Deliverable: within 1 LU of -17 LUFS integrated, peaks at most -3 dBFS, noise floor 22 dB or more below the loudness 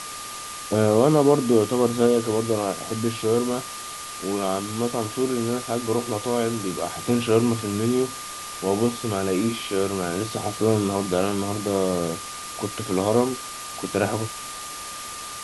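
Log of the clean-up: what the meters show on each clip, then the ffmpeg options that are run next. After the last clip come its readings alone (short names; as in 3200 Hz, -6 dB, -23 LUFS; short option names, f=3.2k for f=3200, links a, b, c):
steady tone 1200 Hz; tone level -37 dBFS; noise floor -35 dBFS; noise floor target -46 dBFS; loudness -24.0 LUFS; peak -5.5 dBFS; loudness target -17.0 LUFS
-> -af "bandreject=f=1.2k:w=30"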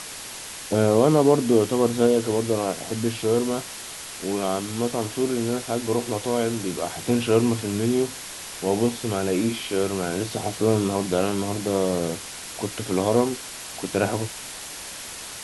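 steady tone none; noise floor -37 dBFS; noise floor target -47 dBFS
-> -af "afftdn=nr=10:nf=-37"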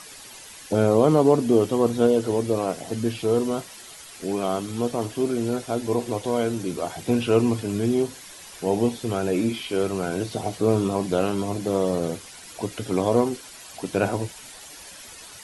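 noise floor -43 dBFS; noise floor target -46 dBFS
-> -af "afftdn=nr=6:nf=-43"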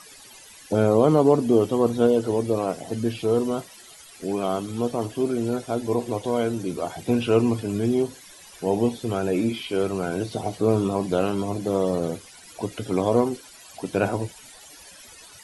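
noise floor -47 dBFS; loudness -24.0 LUFS; peak -6.0 dBFS; loudness target -17.0 LUFS
-> -af "volume=7dB,alimiter=limit=-3dB:level=0:latency=1"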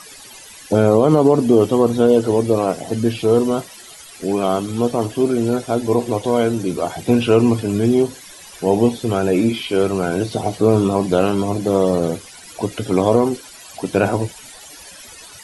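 loudness -17.5 LUFS; peak -3.0 dBFS; noise floor -40 dBFS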